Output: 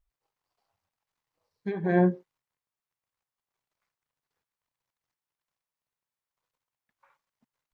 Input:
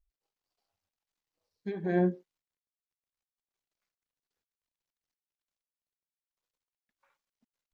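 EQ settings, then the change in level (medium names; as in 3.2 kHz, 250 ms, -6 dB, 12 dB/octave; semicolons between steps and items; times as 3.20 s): graphic EQ 125/500/1000/2000 Hz +10/+3/+9/+4 dB; 0.0 dB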